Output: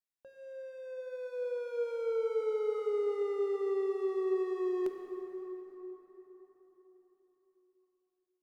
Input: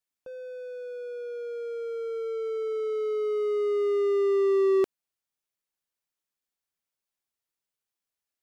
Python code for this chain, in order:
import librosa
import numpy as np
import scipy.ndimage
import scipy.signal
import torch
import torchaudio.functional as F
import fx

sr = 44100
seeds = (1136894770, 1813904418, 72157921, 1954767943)

p1 = fx.doppler_pass(x, sr, speed_mps=21, closest_m=19.0, pass_at_s=2.14)
p2 = fx.clip_asym(p1, sr, top_db=-44.0, bottom_db=-28.0)
p3 = p1 + (p2 * 10.0 ** (-12.0 / 20.0))
p4 = fx.hum_notches(p3, sr, base_hz=60, count=9)
p5 = fx.rev_plate(p4, sr, seeds[0], rt60_s=4.7, hf_ratio=0.55, predelay_ms=0, drr_db=4.0)
y = p5 * 10.0 ** (-3.0 / 20.0)